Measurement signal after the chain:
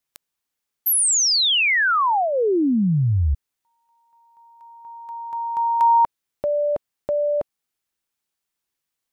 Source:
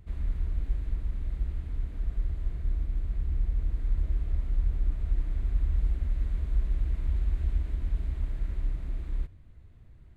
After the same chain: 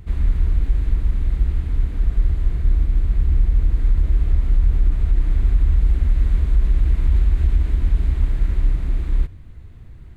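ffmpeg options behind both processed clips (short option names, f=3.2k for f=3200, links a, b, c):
-af "equalizer=f=610:w=4.4:g=-4.5,alimiter=level_in=19.5dB:limit=-1dB:release=50:level=0:latency=1,volume=-7dB"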